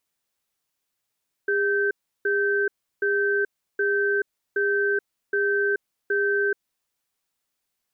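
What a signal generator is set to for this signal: cadence 405 Hz, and 1550 Hz, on 0.43 s, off 0.34 s, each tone -22.5 dBFS 5.09 s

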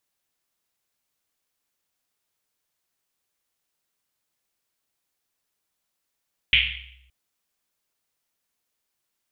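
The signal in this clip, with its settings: Risset drum length 0.57 s, pitch 64 Hz, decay 1.24 s, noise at 2700 Hz, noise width 1200 Hz, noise 80%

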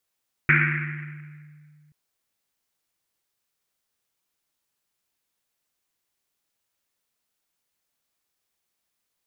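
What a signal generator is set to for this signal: Risset drum length 1.43 s, pitch 150 Hz, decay 2.55 s, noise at 1900 Hz, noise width 940 Hz, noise 55%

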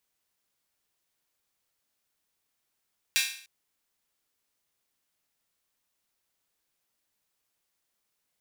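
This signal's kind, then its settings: open hi-hat length 0.30 s, high-pass 2300 Hz, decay 0.52 s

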